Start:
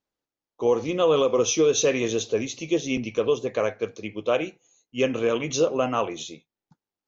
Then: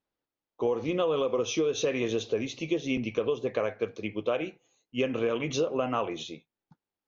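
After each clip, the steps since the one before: LPF 3900 Hz 12 dB/oct; compressor, threshold -24 dBFS, peak gain reduction 8.5 dB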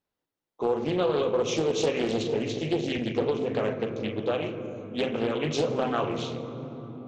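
on a send at -4 dB: reverb RT60 4.3 s, pre-delay 12 ms; on the sum: Doppler distortion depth 0.36 ms

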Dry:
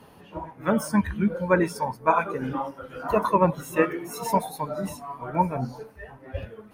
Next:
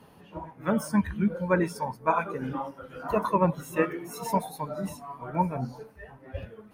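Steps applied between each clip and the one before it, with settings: bell 170 Hz +3 dB 0.8 oct; gain -4 dB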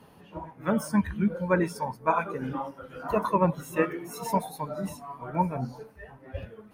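nothing audible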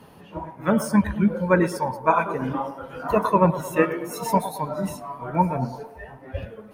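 narrowing echo 0.111 s, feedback 64%, band-pass 650 Hz, level -12 dB; gain +5.5 dB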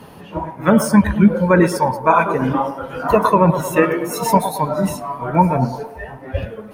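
maximiser +9.5 dB; gain -1 dB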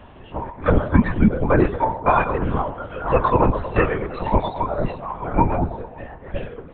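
LPC vocoder at 8 kHz whisper; gain -3.5 dB

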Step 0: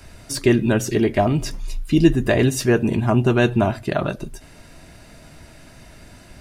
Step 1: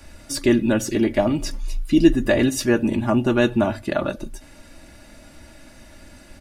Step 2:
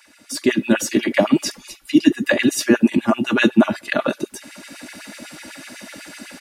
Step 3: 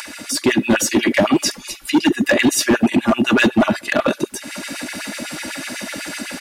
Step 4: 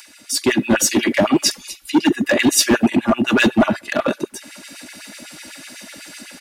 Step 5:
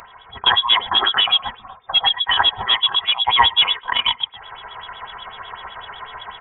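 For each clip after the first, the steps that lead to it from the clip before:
notches 50/100 Hz; comb 3.5 ms, depth 57%; gain -2 dB
bell 580 Hz -7 dB 2.2 oct; AGC gain up to 14 dB; LFO high-pass sine 8 Hz 200–2500 Hz; gain -2 dB
in parallel at 0 dB: limiter -13 dBFS, peak gain reduction 11.5 dB; on the sum: upward compressor, threshold -22 dBFS; hard clip -9 dBFS, distortion -11 dB
three-band expander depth 70%; gain -1 dB
vocal rider 2 s; inverted band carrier 3600 Hz; fifteen-band EQ 160 Hz -8 dB, 1000 Hz +9 dB, 2500 Hz -4 dB; gain -1 dB

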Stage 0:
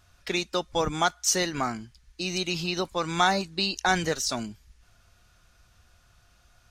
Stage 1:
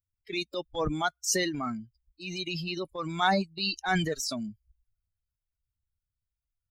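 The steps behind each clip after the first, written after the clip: per-bin expansion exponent 2; transient shaper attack -7 dB, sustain +6 dB; gain +1.5 dB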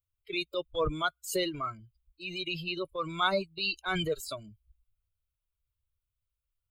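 fixed phaser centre 1200 Hz, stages 8; gain +2 dB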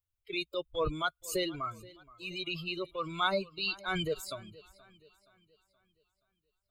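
warbling echo 0.474 s, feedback 44%, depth 58 cents, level -21.5 dB; gain -2 dB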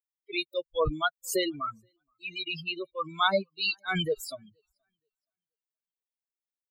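per-bin expansion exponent 2; gain +7 dB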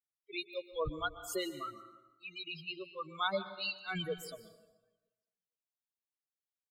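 plate-style reverb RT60 1.1 s, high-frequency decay 0.7×, pre-delay 0.11 s, DRR 12 dB; gain -9 dB

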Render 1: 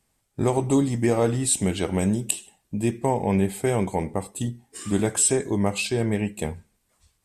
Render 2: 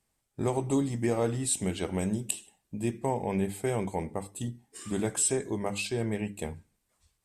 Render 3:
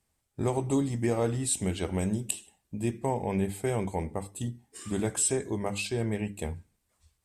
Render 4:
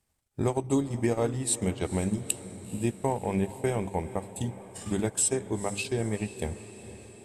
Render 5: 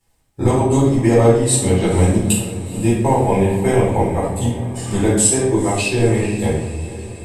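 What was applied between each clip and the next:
notches 50/100/150/200/250/300 Hz; gain -6.5 dB
bell 75 Hz +7 dB 0.77 oct
transient shaper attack +3 dB, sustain -11 dB; diffused feedback echo 0.468 s, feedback 62%, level -15 dB
reverb RT60 0.80 s, pre-delay 6 ms, DRR -9.5 dB; gain +1 dB

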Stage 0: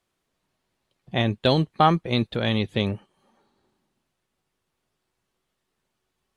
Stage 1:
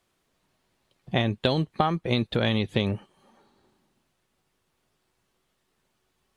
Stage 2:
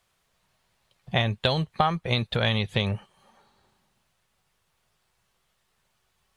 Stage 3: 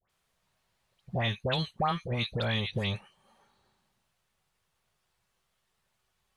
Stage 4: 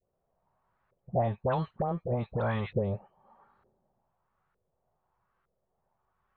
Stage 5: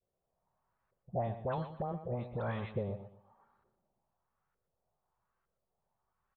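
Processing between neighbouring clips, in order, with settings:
compressor 16:1, threshold -24 dBFS, peak gain reduction 13 dB; gain +4.5 dB
bell 300 Hz -13.5 dB 0.97 oct; gain +3 dB
dispersion highs, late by 97 ms, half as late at 1500 Hz; gain -5.5 dB
LFO low-pass saw up 1.1 Hz 470–1500 Hz
feedback echo 0.122 s, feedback 29%, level -11.5 dB; gain -7 dB

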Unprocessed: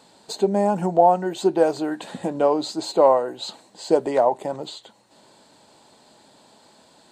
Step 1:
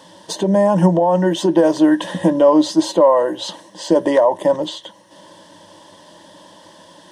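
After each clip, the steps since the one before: HPF 55 Hz; limiter -15 dBFS, peak gain reduction 11.5 dB; ripple EQ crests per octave 1.2, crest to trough 13 dB; gain +8 dB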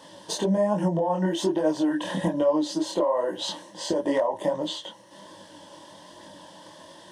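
compressor 3:1, threshold -20 dBFS, peak gain reduction 9.5 dB; chorus voices 2, 1.2 Hz, delay 23 ms, depth 3.8 ms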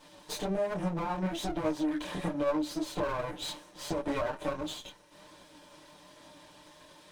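minimum comb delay 6.7 ms; small resonant body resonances 2400/3900 Hz, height 7 dB, ringing for 25 ms; gain -6.5 dB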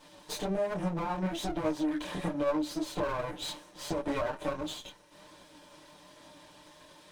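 nothing audible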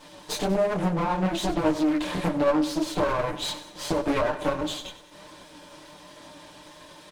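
feedback echo 95 ms, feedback 48%, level -14.5 dB; Doppler distortion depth 0.41 ms; gain +7.5 dB

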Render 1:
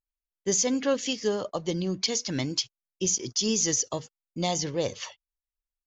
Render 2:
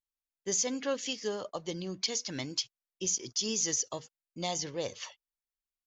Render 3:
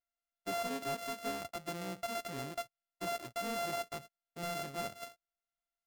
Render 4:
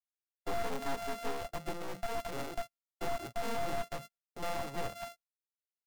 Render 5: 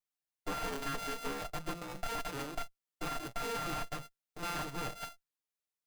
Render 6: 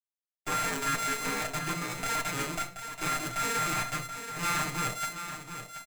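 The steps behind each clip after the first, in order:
low shelf 400 Hz -6.5 dB; gain -4.5 dB
sample sorter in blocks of 64 samples; hard clip -29 dBFS, distortion -11 dB; gain -3.5 dB
one-sided fold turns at -46.5 dBFS; spectral noise reduction 10 dB; gate with hold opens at -51 dBFS; gain +6 dB
minimum comb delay 6.6 ms; gain +1.5 dB
G.711 law mismatch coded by mu; echo 0.729 s -9.5 dB; reverb RT60 0.30 s, pre-delay 3 ms, DRR 5 dB; gain +6 dB

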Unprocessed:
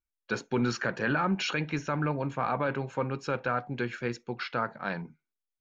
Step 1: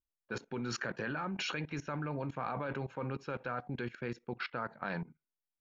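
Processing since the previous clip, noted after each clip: low-pass opened by the level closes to 850 Hz, open at -25.5 dBFS; level quantiser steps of 19 dB; gain +1 dB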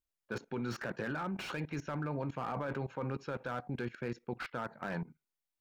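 dynamic EQ 3000 Hz, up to -3 dB, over -50 dBFS, Q 0.81; slew limiter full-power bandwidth 22 Hz; gain +1 dB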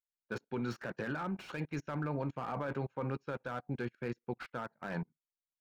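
upward expander 2.5:1, over -50 dBFS; gain +2.5 dB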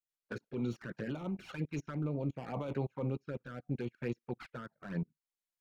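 envelope flanger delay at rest 6.4 ms, full sweep at -33.5 dBFS; rotary speaker horn 6 Hz, later 0.7 Hz, at 1.17; gain +3 dB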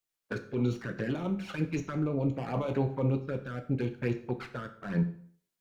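plate-style reverb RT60 0.53 s, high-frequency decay 0.9×, DRR 7 dB; gain +6 dB

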